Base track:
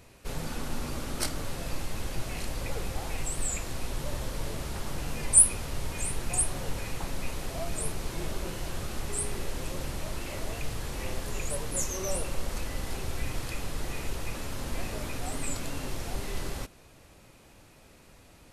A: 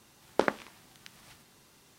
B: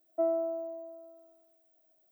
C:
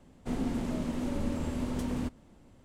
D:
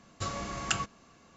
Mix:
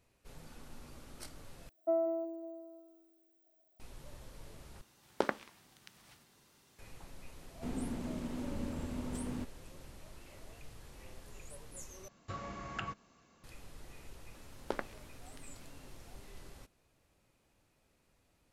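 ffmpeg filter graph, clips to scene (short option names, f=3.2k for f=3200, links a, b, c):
-filter_complex "[1:a]asplit=2[a][b];[0:a]volume=-18dB[c];[2:a]asplit=2[d][e];[e]adelay=184,lowpass=f=2k:p=1,volume=-8dB,asplit=2[f][g];[g]adelay=184,lowpass=f=2k:p=1,volume=0.43,asplit=2[h][i];[i]adelay=184,lowpass=f=2k:p=1,volume=0.43,asplit=2[j][k];[k]adelay=184,lowpass=f=2k:p=1,volume=0.43,asplit=2[l][m];[m]adelay=184,lowpass=f=2k:p=1,volume=0.43[n];[d][f][h][j][l][n]amix=inputs=6:normalize=0[o];[4:a]acrossover=split=2900[p][q];[q]acompressor=threshold=-55dB:ratio=4:attack=1:release=60[r];[p][r]amix=inputs=2:normalize=0[s];[c]asplit=4[t][u][v][w];[t]atrim=end=1.694[x];[o]atrim=end=2.11,asetpts=PTS-STARTPTS,volume=-2.5dB[y];[u]atrim=start=3.796:end=4.814[z];[a]atrim=end=1.98,asetpts=PTS-STARTPTS,volume=-6dB[aa];[v]atrim=start=6.786:end=12.084[ab];[s]atrim=end=1.36,asetpts=PTS-STARTPTS,volume=-7dB[ac];[w]atrim=start=13.436[ad];[3:a]atrim=end=2.64,asetpts=PTS-STARTPTS,volume=-7dB,afade=t=in:d=0.004:c=hsin,afade=t=out:st=2.636:d=0.004:c=hsin,adelay=7360[ae];[b]atrim=end=1.98,asetpts=PTS-STARTPTS,volume=-11.5dB,afade=t=in:d=0.004:c=hsin,afade=t=out:st=1.976:d=0.004:c=hsin,adelay=14310[af];[x][y]acrossfade=d=0.004:c1=hsin:c2=hsin[ag];[ag][z]acrossfade=d=0.004:c1=hsin:c2=hsin[ah];[ah][aa]acrossfade=d=0.004:c1=hsin:c2=hsin[ai];[ai][ab]acrossfade=d=0.004:c1=hsin:c2=hsin[aj];[aj][ac]acrossfade=d=0.004:c1=hsin:c2=hsin[ak];[ak][ad]acrossfade=d=0.004:c1=hsin:c2=hsin[al];[al][ae][af]amix=inputs=3:normalize=0"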